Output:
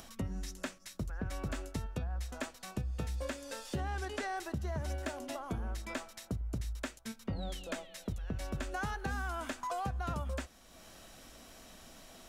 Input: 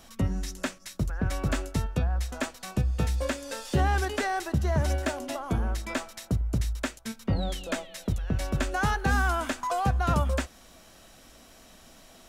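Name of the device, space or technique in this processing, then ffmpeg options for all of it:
upward and downward compression: -filter_complex "[0:a]acompressor=mode=upward:threshold=0.0112:ratio=2.5,acompressor=threshold=0.0501:ratio=6,asettb=1/sr,asplit=3[s0][s1][s2];[s0]atrim=end=3.794[s3];[s1]atrim=start=3.79:end=4.37,asetpts=PTS-STARTPTS,afade=t=in:d=0.004:c=qsin,afade=t=out:st=0.576:d=0.004:c=qsin,lowpass=11000[s4];[s2]atrim=start=4.366[s5];[s3][s4]acrossfade=d=0.004:c1=hsin:c2=qsin[s6];[s6][s5]acrossfade=d=0.004:c1=qsin:c2=hsin,volume=0.447"

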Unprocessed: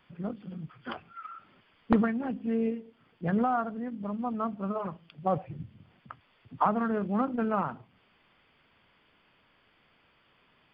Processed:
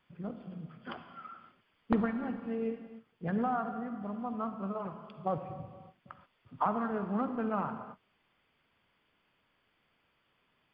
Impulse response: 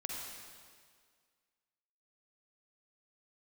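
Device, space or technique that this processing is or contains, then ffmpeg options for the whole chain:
keyed gated reverb: -filter_complex "[0:a]asplit=3[s0][s1][s2];[1:a]atrim=start_sample=2205[s3];[s1][s3]afir=irnorm=-1:irlink=0[s4];[s2]apad=whole_len=473621[s5];[s4][s5]sidechaingate=range=0.0224:threshold=0.00141:ratio=16:detection=peak,volume=0.75[s6];[s0][s6]amix=inputs=2:normalize=0,volume=0.376"

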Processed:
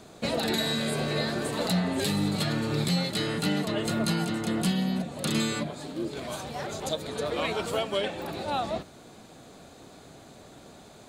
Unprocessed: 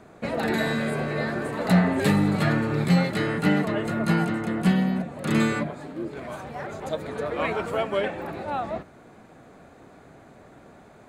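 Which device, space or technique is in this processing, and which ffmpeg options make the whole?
over-bright horn tweeter: -af "highshelf=f=2700:t=q:w=1.5:g=10,alimiter=limit=0.141:level=0:latency=1:release=498"

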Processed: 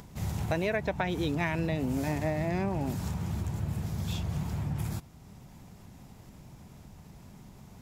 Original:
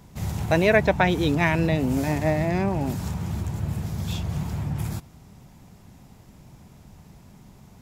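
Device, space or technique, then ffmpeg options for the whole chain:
upward and downward compression: -af "acompressor=mode=upward:threshold=0.01:ratio=2.5,acompressor=threshold=0.0794:ratio=6,volume=0.631"

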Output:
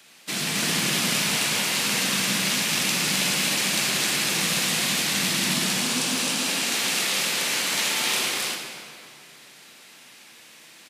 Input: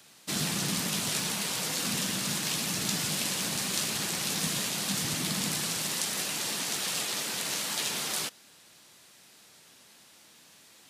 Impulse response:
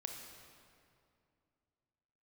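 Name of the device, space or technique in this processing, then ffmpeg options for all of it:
stadium PA: -filter_complex "[0:a]asettb=1/sr,asplit=3[s0][s1][s2];[s0]atrim=end=5.534[s3];[s1]atrim=start=5.53:end=6.47,asetpts=PTS-STARTPTS,afade=t=in:d=0.004:c=qsin,afade=t=out:st=0.936:d=0.004:c=qsin,equalizer=f=250:t=o:w=0.33:g=12,equalizer=f=2000:t=o:w=0.33:g=-7,equalizer=f=12500:t=o:w=0.33:g=-6[s4];[s2]atrim=start=6.466[s5];[s3][s4]acrossfade=d=0.004:c1=hsin:c2=qsin[s6];[s6][s5]acrossfade=d=0.004:c1=qsin:c2=hsin,highpass=160,equalizer=f=2300:t=o:w=1.1:g=6.5,aecho=1:1:195.3|262.4:0.355|0.891[s7];[1:a]atrim=start_sample=2205[s8];[s7][s8]afir=irnorm=-1:irlink=0,volume=1.78"

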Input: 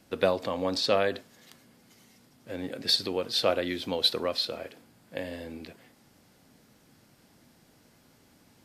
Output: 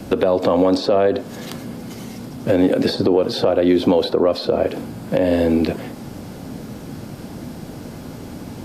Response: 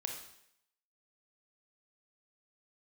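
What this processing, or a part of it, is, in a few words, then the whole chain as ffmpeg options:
mastering chain: -filter_complex "[0:a]equalizer=f=1900:t=o:w=0.26:g=-3.5,acrossover=split=230|1300[s0][s1][s2];[s0]acompressor=threshold=0.00251:ratio=4[s3];[s1]acompressor=threshold=0.0355:ratio=4[s4];[s2]acompressor=threshold=0.00631:ratio=4[s5];[s3][s4][s5]amix=inputs=3:normalize=0,acompressor=threshold=0.00891:ratio=2.5,asoftclip=type=tanh:threshold=0.0447,tiltshelf=f=970:g=6,alimiter=level_in=29.9:limit=0.891:release=50:level=0:latency=1,volume=0.531"

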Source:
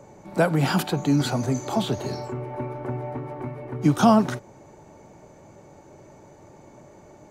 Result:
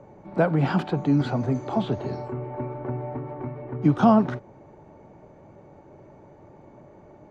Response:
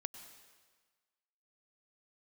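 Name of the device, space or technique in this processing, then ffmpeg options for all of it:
phone in a pocket: -af "lowpass=3800,highshelf=f=2100:g=-9"

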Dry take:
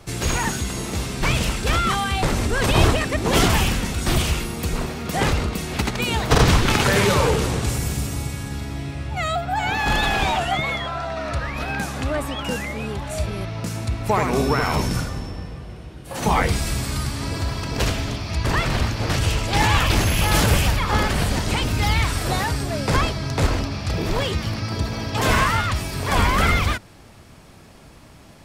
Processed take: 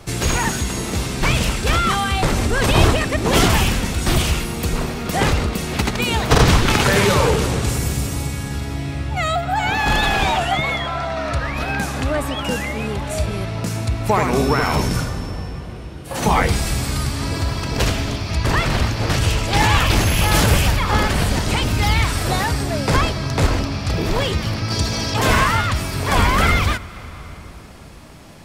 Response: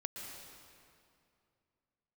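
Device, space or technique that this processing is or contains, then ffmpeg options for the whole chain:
compressed reverb return: -filter_complex "[0:a]asettb=1/sr,asplit=3[s0][s1][s2];[s0]atrim=end=24.704[s3];[s1]atrim=start=24.7:end=25.14,asetpts=PTS-STARTPTS,afade=t=in:d=0.004:c=qsin,afade=t=out:st=0.436:d=0.004:c=qsin,equalizer=f=6700:t=o:w=1.9:g=10.5[s4];[s2]atrim=start=25.136[s5];[s3][s4]acrossfade=d=0.004:c1=hsin:c2=qsin[s6];[s6][s5]acrossfade=d=0.004:c1=qsin:c2=hsin,asplit=2[s7][s8];[1:a]atrim=start_sample=2205[s9];[s8][s9]afir=irnorm=-1:irlink=0,acompressor=threshold=0.0447:ratio=6,volume=0.596[s10];[s7][s10]amix=inputs=2:normalize=0,volume=1.19"

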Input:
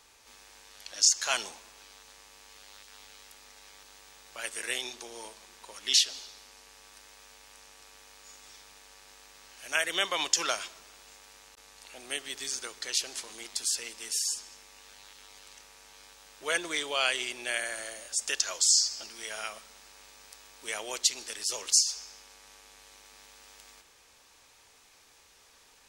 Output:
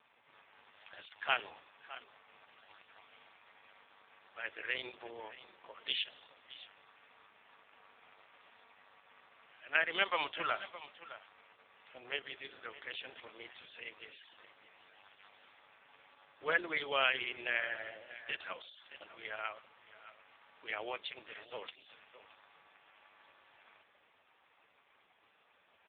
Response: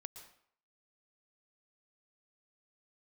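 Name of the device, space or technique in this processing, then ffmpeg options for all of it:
satellite phone: -af "highpass=300,lowpass=3100,aecho=1:1:617:0.178" -ar 8000 -c:a libopencore_amrnb -b:a 4750

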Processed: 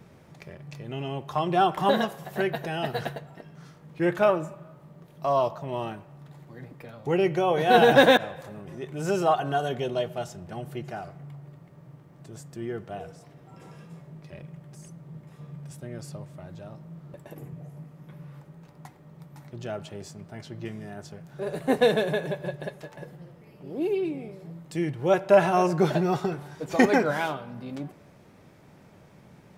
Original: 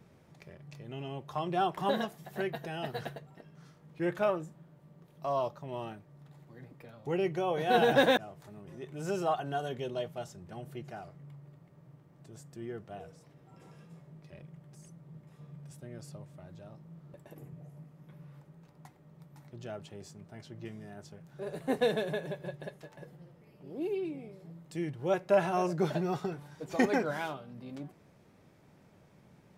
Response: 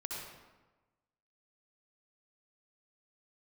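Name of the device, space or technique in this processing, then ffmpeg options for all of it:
filtered reverb send: -filter_complex "[0:a]asplit=2[s0][s1];[s1]highpass=490,lowpass=3500[s2];[1:a]atrim=start_sample=2205[s3];[s2][s3]afir=irnorm=-1:irlink=0,volume=0.158[s4];[s0][s4]amix=inputs=2:normalize=0,volume=2.37"

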